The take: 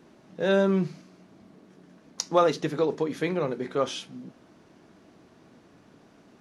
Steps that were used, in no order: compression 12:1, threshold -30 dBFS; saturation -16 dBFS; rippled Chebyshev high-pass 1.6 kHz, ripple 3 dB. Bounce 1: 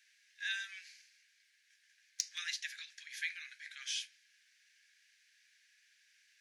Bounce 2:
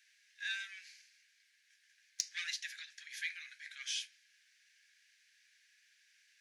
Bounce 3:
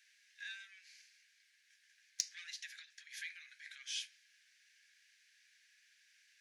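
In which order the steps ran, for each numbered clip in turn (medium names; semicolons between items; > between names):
rippled Chebyshev high-pass > saturation > compression; saturation > rippled Chebyshev high-pass > compression; saturation > compression > rippled Chebyshev high-pass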